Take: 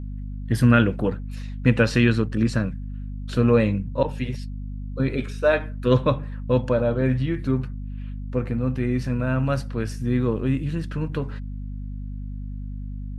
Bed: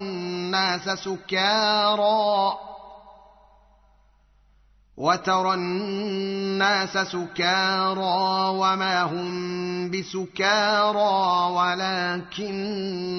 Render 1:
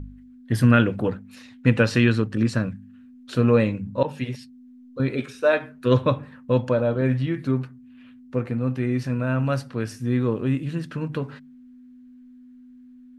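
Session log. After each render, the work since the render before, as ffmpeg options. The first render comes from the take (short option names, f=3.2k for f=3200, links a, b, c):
-af "bandreject=f=50:t=h:w=4,bandreject=f=100:t=h:w=4,bandreject=f=150:t=h:w=4,bandreject=f=200:t=h:w=4"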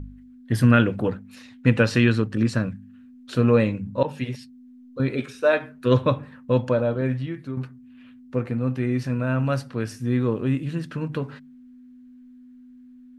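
-filter_complex "[0:a]asplit=2[a][b];[a]atrim=end=7.57,asetpts=PTS-STARTPTS,afade=t=out:st=6.76:d=0.81:silence=0.298538[c];[b]atrim=start=7.57,asetpts=PTS-STARTPTS,afade=t=in:d=0.004:c=hsin:silence=0.298538[d];[c][d]concat=n=2:v=0:a=1"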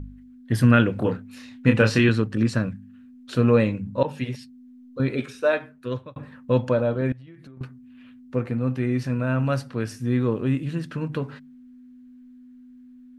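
-filter_complex "[0:a]asettb=1/sr,asplit=3[a][b][c];[a]atrim=end=0.934[d];[b]atrim=start=0.93:end=2.09,asetpts=PTS-STARTPTS,afade=t=in:d=0.004:c=qsin,afade=t=out:st=1.156:d=0.004:c=qsin,asplit=2[e][f];[f]adelay=28,volume=-5dB[g];[e][g]amix=inputs=2:normalize=0,atrim=end_sample=51156[h];[c]atrim=start=2.086[i];[d][h]acrossfade=d=0.004:c1=hsin:c2=qsin[j];[j][i]acrossfade=d=0.004:c1=qsin:c2=hsin,asettb=1/sr,asplit=3[k][l][m];[k]atrim=end=7.124[n];[l]atrim=start=7.12:end=7.61,asetpts=PTS-STARTPTS,afade=t=in:d=0.004:c=qsin,afade=t=out:st=0.486:d=0.004:c=qsin,acompressor=threshold=-41dB:ratio=12:attack=3.2:release=140:knee=1:detection=peak[o];[m]atrim=start=7.606[p];[n][o]acrossfade=d=0.004:c1=hsin:c2=qsin[q];[q][p]acrossfade=d=0.004:c1=qsin:c2=hsin,asplit=2[r][s];[r]atrim=end=6.16,asetpts=PTS-STARTPTS,afade=t=out:st=5.33:d=0.83[t];[s]atrim=start=6.16,asetpts=PTS-STARTPTS,afade=t=in:d=0.004:c=hsin[u];[t][u]concat=n=2:v=0:a=1"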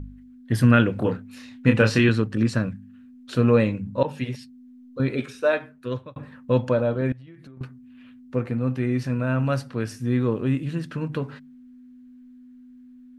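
-af anull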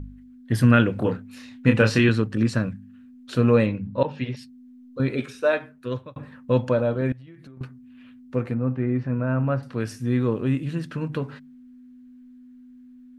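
-filter_complex "[0:a]asettb=1/sr,asplit=3[a][b][c];[a]atrim=end=3.664[d];[b]atrim=start=3.66:end=4.37,asetpts=PTS-STARTPTS,afade=t=in:d=0.004:c=qsin,afade=t=out:st=0.706:d=0.004:c=qsin,lowpass=f=5k:w=0.5412,lowpass=f=5k:w=1.3066[e];[c]atrim=start=4.366[f];[d][e]acrossfade=d=0.004:c1=hsin:c2=qsin[g];[g][f]acrossfade=d=0.004:c1=qsin:c2=hsin,asettb=1/sr,asplit=3[h][i][j];[h]atrim=end=8.544[k];[i]atrim=start=8.54:end=9.63,asetpts=PTS-STARTPTS,afade=t=in:d=0.004:c=qsin,afade=t=out:st=1.086:d=0.004:c=qsin,lowpass=1.6k[l];[j]atrim=start=9.626[m];[k][l]acrossfade=d=0.004:c1=hsin:c2=qsin[n];[n][m]acrossfade=d=0.004:c1=qsin:c2=hsin"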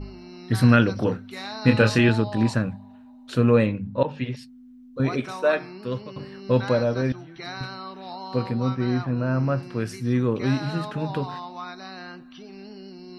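-filter_complex "[1:a]volume=-14.5dB[a];[0:a][a]amix=inputs=2:normalize=0"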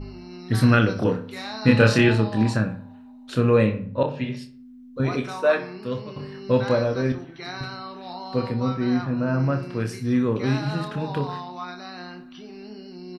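-filter_complex "[0:a]asplit=2[a][b];[b]adelay=28,volume=-8dB[c];[a][c]amix=inputs=2:normalize=0,asplit=2[d][e];[e]adelay=61,lowpass=f=3.2k:p=1,volume=-12dB,asplit=2[f][g];[g]adelay=61,lowpass=f=3.2k:p=1,volume=0.47,asplit=2[h][i];[i]adelay=61,lowpass=f=3.2k:p=1,volume=0.47,asplit=2[j][k];[k]adelay=61,lowpass=f=3.2k:p=1,volume=0.47,asplit=2[l][m];[m]adelay=61,lowpass=f=3.2k:p=1,volume=0.47[n];[f][h][j][l][n]amix=inputs=5:normalize=0[o];[d][o]amix=inputs=2:normalize=0"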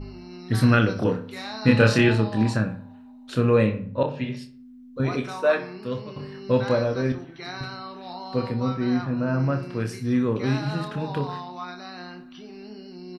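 -af "volume=-1dB"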